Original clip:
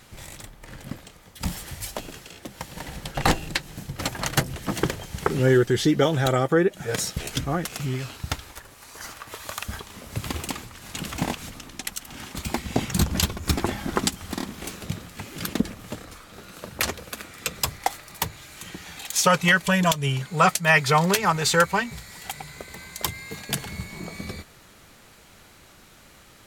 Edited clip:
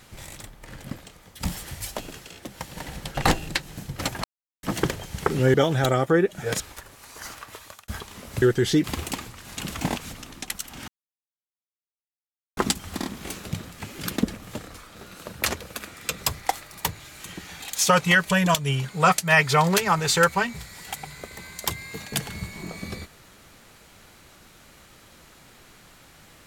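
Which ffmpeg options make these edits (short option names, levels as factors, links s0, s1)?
-filter_complex "[0:a]asplit=10[s0][s1][s2][s3][s4][s5][s6][s7][s8][s9];[s0]atrim=end=4.24,asetpts=PTS-STARTPTS,afade=t=out:st=4.236:d=0.004:c=hsin[s10];[s1]atrim=start=4.24:end=4.63,asetpts=PTS-STARTPTS,volume=0[s11];[s2]atrim=start=4.63:end=5.542,asetpts=PTS-STARTPTS,afade=t=in:d=0.004:c=hsin[s12];[s3]atrim=start=5.958:end=7.022[s13];[s4]atrim=start=8.388:end=9.67,asetpts=PTS-STARTPTS,afade=t=out:st=0.782:d=0.5[s14];[s5]atrim=start=9.67:end=10.212,asetpts=PTS-STARTPTS,afade=t=in:d=0.004:c=hsin[s15];[s6]atrim=start=5.538:end=5.962[s16];[s7]atrim=start=10.208:end=12.25,asetpts=PTS-STARTPTS,afade=t=out:st=2.038:d=0.004:c=hsin[s17];[s8]atrim=start=12.25:end=13.94,asetpts=PTS-STARTPTS,volume=0[s18];[s9]atrim=start=13.94,asetpts=PTS-STARTPTS,afade=t=in:d=0.004:c=hsin[s19];[s10][s11][s12]concat=n=3:v=0:a=1[s20];[s20][s13]acrossfade=d=0.004:c1=hsin:c2=hsin[s21];[s14][s15]concat=n=2:v=0:a=1[s22];[s21][s22]acrossfade=d=0.004:c1=hsin:c2=hsin[s23];[s23][s16]acrossfade=d=0.004:c1=hsin:c2=hsin[s24];[s17][s18][s19]concat=n=3:v=0:a=1[s25];[s24][s25]acrossfade=d=0.004:c1=hsin:c2=hsin"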